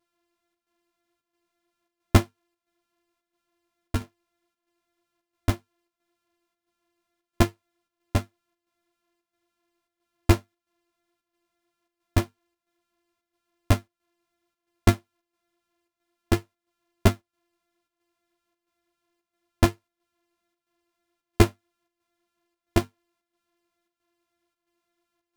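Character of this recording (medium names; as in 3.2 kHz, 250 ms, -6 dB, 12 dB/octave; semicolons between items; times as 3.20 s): a buzz of ramps at a fixed pitch in blocks of 128 samples; chopped level 1.5 Hz, depth 60%, duty 80%; a shimmering, thickened sound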